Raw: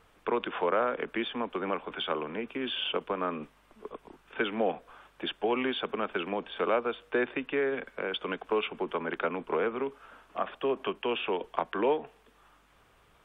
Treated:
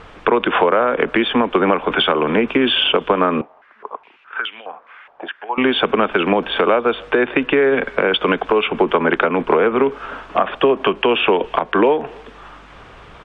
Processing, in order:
downward compressor 8 to 1, threshold −33 dBFS, peak gain reduction 11.5 dB
high-frequency loss of the air 120 metres
far-end echo of a speakerphone 280 ms, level −28 dB
boost into a limiter +23.5 dB
0:03.41–0:05.58: band-pass on a step sequencer 4.8 Hz 740–3,100 Hz
level −1 dB

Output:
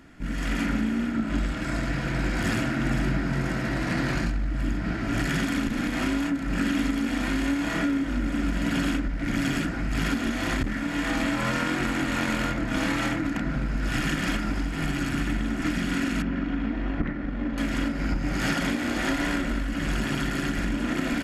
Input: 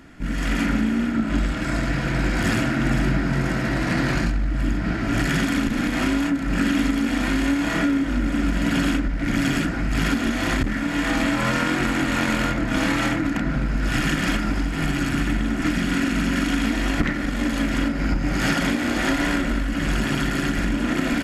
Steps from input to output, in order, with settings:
0:16.22–0:17.58: head-to-tape spacing loss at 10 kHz 39 dB
level −4.5 dB

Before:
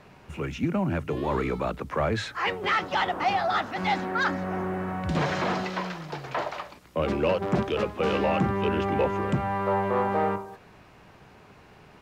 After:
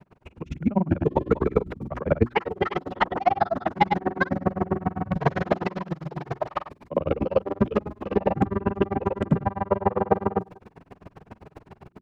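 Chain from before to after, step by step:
surface crackle 530 per second −52 dBFS
tilt shelving filter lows +8 dB, about 1,500 Hz
automatic gain control gain up to 10 dB
granular cloud 42 ms, pitch spread up and down by 0 semitones
mains-hum notches 60/120/180/240/300/360 Hz
tremolo with a sine in dB 7.6 Hz, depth 18 dB

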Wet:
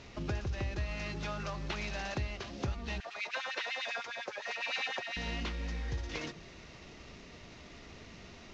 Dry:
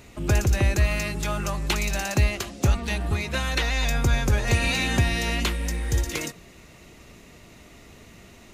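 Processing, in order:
variable-slope delta modulation 32 kbit/s
mains-hum notches 50/100/150/200/250/300/350 Hz
downward compressor 3 to 1, threshold −34 dBFS, peak gain reduction 13.5 dB
0:03.00–0:05.17: auto-filter high-pass sine 9.9 Hz 520–2,700 Hz
level −2.5 dB

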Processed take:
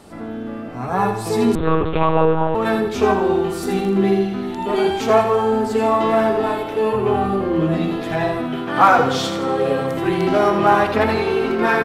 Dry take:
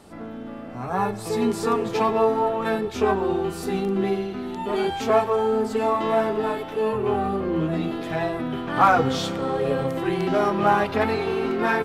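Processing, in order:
0:08.39–0:09.92: low-shelf EQ 110 Hz −12 dB
repeating echo 81 ms, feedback 42%, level −8 dB
0:01.55–0:02.55: one-pitch LPC vocoder at 8 kHz 160 Hz
level +4.5 dB

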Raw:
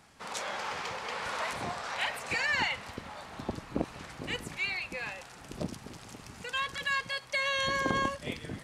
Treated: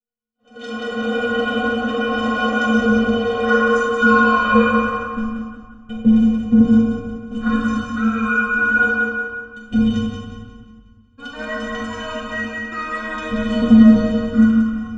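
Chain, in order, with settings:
noise gate −39 dBFS, range −40 dB
feedback echo with a high-pass in the loop 104 ms, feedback 39%, high-pass 320 Hz, level −5.5 dB
automatic gain control gain up to 13.5 dB
EQ curve with evenly spaced ripples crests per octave 0.82, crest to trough 13 dB
convolution reverb RT60 1.0 s, pre-delay 5 ms, DRR −3.5 dB
wrong playback speed 78 rpm record played at 45 rpm
low-shelf EQ 470 Hz +10 dB
stiff-string resonator 220 Hz, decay 0.44 s, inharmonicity 0.03
level +5.5 dB

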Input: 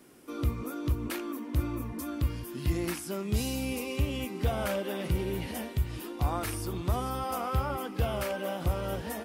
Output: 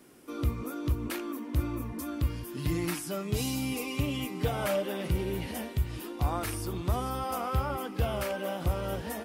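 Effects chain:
0:02.56–0:04.86: comb filter 6.7 ms, depth 64%

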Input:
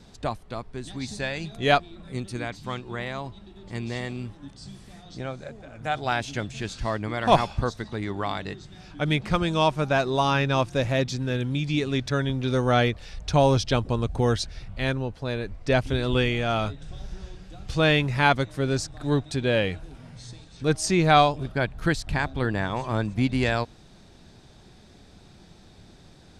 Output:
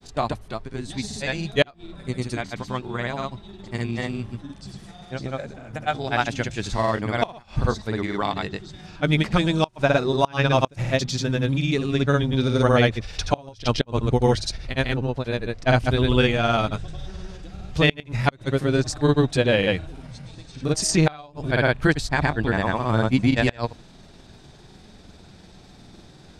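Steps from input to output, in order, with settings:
granular cloud 100 ms, grains 20 per second, pitch spread up and down by 0 semitones
mains-hum notches 50/100 Hz
gate with flip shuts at −11 dBFS, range −28 dB
level +5.5 dB

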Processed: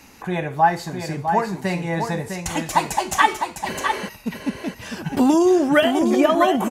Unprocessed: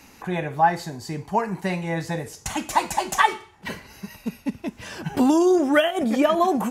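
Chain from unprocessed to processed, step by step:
healed spectral selection 0:03.77–0:04.06, 240–10,000 Hz before
single-tap delay 655 ms −6.5 dB
level +2 dB

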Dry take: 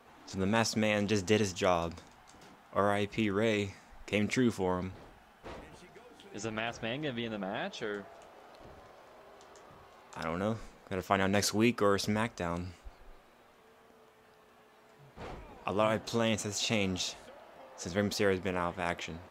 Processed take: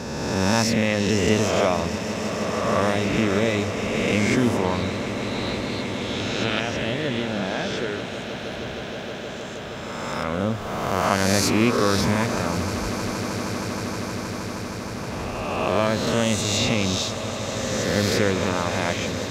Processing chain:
peak hold with a rise ahead of every peak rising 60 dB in 1.54 s
high-pass filter 54 Hz
low-shelf EQ 180 Hz +7.5 dB
in parallel at +1 dB: downward compressor, threshold −39 dBFS, peak gain reduction 19 dB
0:04.64–0:06.60: on the sum: low-pass with resonance 4,000 Hz, resonance Q 9.6
echo that builds up and dies away 157 ms, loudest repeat 8, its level −16 dB
on a send at −16 dB: convolution reverb RT60 0.60 s, pre-delay 3 ms
on the sum: level +2.5 dB

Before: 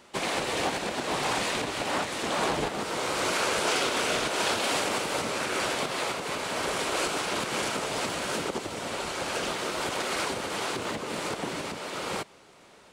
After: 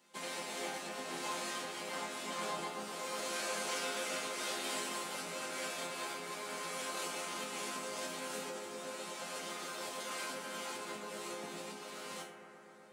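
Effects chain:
high-pass filter 140 Hz 12 dB per octave
high-shelf EQ 6,600 Hz +10 dB
resonators tuned to a chord F3 minor, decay 0.38 s
on a send: bucket-brigade delay 123 ms, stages 2,048, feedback 84%, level −10 dB
on the sum: level +3.5 dB

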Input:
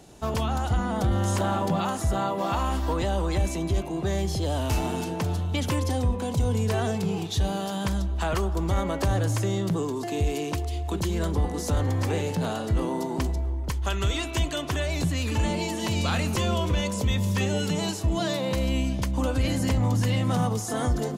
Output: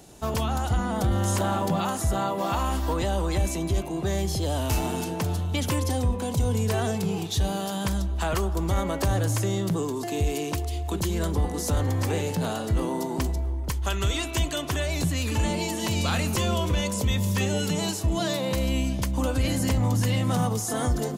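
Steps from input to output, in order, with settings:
high-shelf EQ 8,700 Hz +9 dB

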